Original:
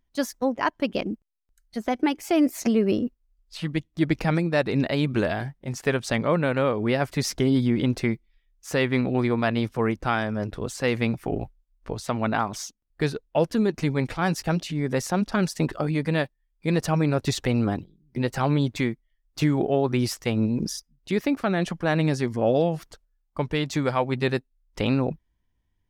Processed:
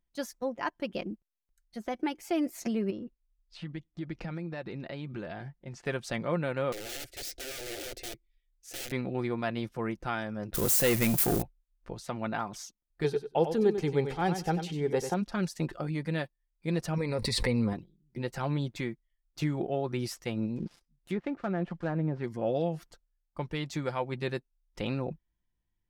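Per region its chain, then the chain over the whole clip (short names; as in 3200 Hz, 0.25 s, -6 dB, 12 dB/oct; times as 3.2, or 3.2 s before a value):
2.9–5.86 compressor 3:1, threshold -27 dBFS + air absorption 83 m
6.72–8.92 wrapped overs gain 23.5 dB + fixed phaser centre 430 Hz, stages 4
10.54–11.42 switching spikes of -22.5 dBFS + high shelf 6600 Hz +9.5 dB + sample leveller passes 3
13.04–15.14 small resonant body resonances 430/790/3200 Hz, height 15 dB, ringing for 60 ms + feedback echo 94 ms, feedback 16%, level -9 dB
16.97–17.73 ripple EQ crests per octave 0.93, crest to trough 12 dB + backwards sustainer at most 26 dB/s
20.56–22.24 switching dead time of 0.085 ms + treble ducked by the level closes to 980 Hz, closed at -17.5 dBFS
whole clip: notch 1100 Hz, Q 23; comb 5.7 ms, depth 32%; gain -9 dB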